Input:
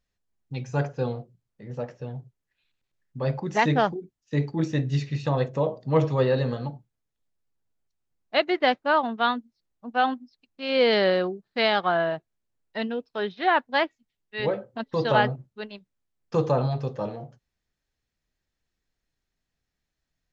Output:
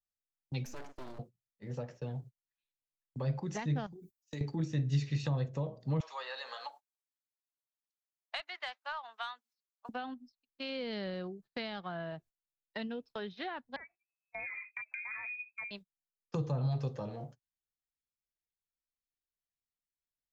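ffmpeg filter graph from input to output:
ffmpeg -i in.wav -filter_complex "[0:a]asettb=1/sr,asplit=3[link_01][link_02][link_03];[link_01]atrim=end=0.654[link_04];[link_02]atrim=start=0.65:end=1.19,asetpts=PTS-STARTPTS,afade=type=in:duration=0.004:curve=qsin,afade=type=out:start_time=0.536:duration=0.004:curve=qsin,acompressor=threshold=-41dB:ratio=3:attack=3.2:release=140:knee=1:detection=peak,aeval=exprs='abs(val(0))':channel_layout=same[link_05];[link_03]atrim=start=1.186[link_06];[link_04][link_05]acrossfade=duration=0.004:curve1=hsin:curve2=qsin[link_07];[link_07][link_06]acrossfade=duration=0.004:curve1=qsin:curve2=hsin,asettb=1/sr,asplit=3[link_08][link_09][link_10];[link_08]atrim=end=3.864[link_11];[link_09]atrim=start=3.86:end=4.41,asetpts=PTS-STARTPTS,afade=type=in:duration=0.004:curve=qsin,afade=type=out:start_time=0.546:duration=0.004:curve=qsin,aemphasis=mode=production:type=75fm,acompressor=threshold=-35dB:ratio=5:attack=3.2:release=140:knee=1:detection=peak[link_12];[link_10]atrim=start=4.406[link_13];[link_11][link_12]acrossfade=duration=0.004:curve1=hsin:curve2=qsin[link_14];[link_14][link_13]acrossfade=duration=0.004:curve1=qsin:curve2=hsin,asettb=1/sr,asplit=3[link_15][link_16][link_17];[link_15]atrim=end=6.004[link_18];[link_16]atrim=start=6:end=9.89,asetpts=PTS-STARTPTS,afade=type=in:duration=0.004:curve=qsin,afade=type=out:start_time=3.886:duration=0.004:curve=qsin,highpass=frequency=820:width=0.5412,highpass=frequency=820:width=1.3066,acontrast=65[link_19];[link_17]atrim=start=9.886[link_20];[link_18][link_19]acrossfade=duration=0.004:curve1=hsin:curve2=qsin[link_21];[link_21][link_20]acrossfade=duration=0.004:curve1=qsin:curve2=hsin,asettb=1/sr,asplit=3[link_22][link_23][link_24];[link_22]atrim=end=13.764[link_25];[link_23]atrim=start=13.76:end=15.71,asetpts=PTS-STARTPTS,afade=type=in:duration=0.004:curve=qsin,afade=type=out:start_time=1.946:duration=0.004:curve=qsin,asubboost=boost=6:cutoff=230,acompressor=threshold=-31dB:ratio=8:attack=3.2:release=140:knee=1:detection=peak,lowpass=frequency=2200:width_type=q:width=0.5098,lowpass=frequency=2200:width_type=q:width=0.6013,lowpass=frequency=2200:width_type=q:width=0.9,lowpass=frequency=2200:width_type=q:width=2.563,afreqshift=-2600[link_26];[link_24]atrim=start=15.706[link_27];[link_25][link_26]acrossfade=duration=0.004:curve1=hsin:curve2=qsin[link_28];[link_28][link_27]acrossfade=duration=0.004:curve1=qsin:curve2=hsin,agate=range=-20dB:threshold=-45dB:ratio=16:detection=peak,highshelf=frequency=3800:gain=8,acrossover=split=180[link_29][link_30];[link_30]acompressor=threshold=-35dB:ratio=10[link_31];[link_29][link_31]amix=inputs=2:normalize=0,volume=-3.5dB" out.wav

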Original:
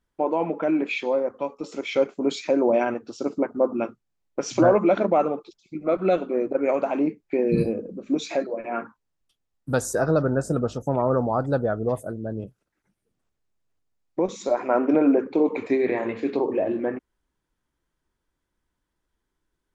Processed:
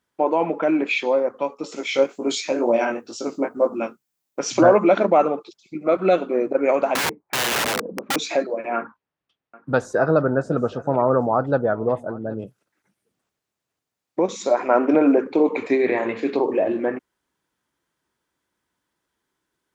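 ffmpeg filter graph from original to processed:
ffmpeg -i in.wav -filter_complex "[0:a]asettb=1/sr,asplit=3[link_01][link_02][link_03];[link_01]atrim=end=1.764[link_04];[link_02]atrim=start=1.76:end=4.4,asetpts=PTS-STARTPTS,afade=type=in:duration=0.004:curve=qsin,afade=type=out:start_time=2.636:duration=0.004:curve=qsin,aemphasis=mode=production:type=50kf,flanger=delay=17:depth=5.2:speed=2.1[link_05];[link_03]atrim=start=4.396[link_06];[link_04][link_05]acrossfade=duration=0.004:curve1=hsin:curve2=qsin[link_07];[link_07][link_06]acrossfade=duration=0.004:curve1=qsin:curve2=hsin,asettb=1/sr,asplit=3[link_08][link_09][link_10];[link_08]atrim=end=6.954[link_11];[link_09]atrim=start=6.95:end=8.16,asetpts=PTS-STARTPTS,afade=type=in:duration=0.004:curve=qsin,afade=type=out:start_time=1.206:duration=0.004:curve=qsin,lowpass=frequency=940:width_type=q:width=3.2,aeval=exprs='(mod(12.6*val(0)+1,2)-1)/12.6':channel_layout=same[link_12];[link_10]atrim=start=8.156[link_13];[link_11][link_12]acrossfade=duration=0.004:curve1=hsin:curve2=qsin[link_14];[link_14][link_13]acrossfade=duration=0.004:curve1=qsin:curve2=hsin,asettb=1/sr,asplit=3[link_15][link_16][link_17];[link_15]atrim=end=8.764[link_18];[link_16]atrim=start=8.76:end=12.39,asetpts=PTS-STARTPTS,afade=type=in:duration=0.004:curve=qsin,afade=type=out:start_time=3.626:duration=0.004:curve=qsin,lowpass=2700,aecho=1:1:774:0.0891,atrim=end_sample=160083[link_19];[link_17]atrim=start=12.386[link_20];[link_18][link_19]acrossfade=duration=0.004:curve1=hsin:curve2=qsin[link_21];[link_21][link_20]acrossfade=duration=0.004:curve1=qsin:curve2=hsin,highpass=110,lowshelf=frequency=450:gain=-5.5,volume=6dB" out.wav

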